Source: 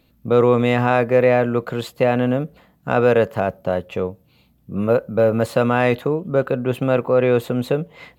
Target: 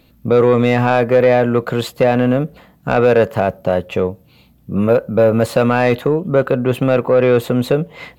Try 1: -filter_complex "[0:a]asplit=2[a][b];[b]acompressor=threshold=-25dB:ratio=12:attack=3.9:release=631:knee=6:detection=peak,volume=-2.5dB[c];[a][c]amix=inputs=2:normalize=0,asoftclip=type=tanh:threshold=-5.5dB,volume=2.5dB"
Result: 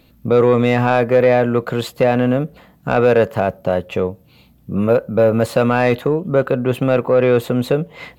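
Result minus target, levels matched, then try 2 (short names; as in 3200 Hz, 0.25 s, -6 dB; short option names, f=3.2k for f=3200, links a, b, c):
compressor: peak gain reduction +8.5 dB
-filter_complex "[0:a]asplit=2[a][b];[b]acompressor=threshold=-15.5dB:ratio=12:attack=3.9:release=631:knee=6:detection=peak,volume=-2.5dB[c];[a][c]amix=inputs=2:normalize=0,asoftclip=type=tanh:threshold=-5.5dB,volume=2.5dB"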